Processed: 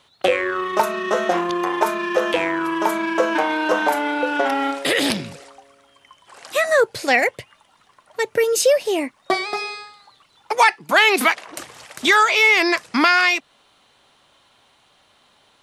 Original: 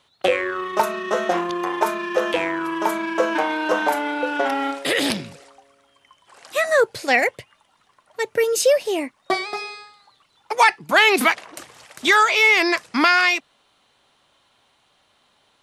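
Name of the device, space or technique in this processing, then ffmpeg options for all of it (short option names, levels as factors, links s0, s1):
parallel compression: -filter_complex "[0:a]asettb=1/sr,asplit=3[s0][s1][s2];[s0]atrim=end=10.694[s3];[s1]atrim=start=10.69:end=11.49,asetpts=PTS-STARTPTS,afade=t=in:d=0.004:c=qsin,afade=t=out:st=0.796:d=0.004:c=qsin,highpass=f=240:p=1[s4];[s2]atrim=start=11.486[s5];[s3][s4]acrossfade=d=0.004:c1=hsin:c2=qsin[s6];[s6][s5]acrossfade=d=0.004:c1=qsin:c2=hsin,asplit=2[s7][s8];[s8]acompressor=threshold=0.0501:ratio=6,volume=0.891[s9];[s7][s9]amix=inputs=2:normalize=0,volume=0.891"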